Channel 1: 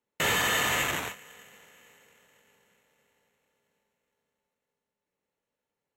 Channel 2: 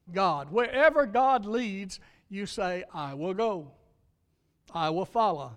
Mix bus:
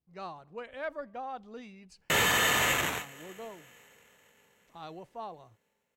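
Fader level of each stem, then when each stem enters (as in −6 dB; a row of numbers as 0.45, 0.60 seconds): +0.5, −16.0 decibels; 1.90, 0.00 seconds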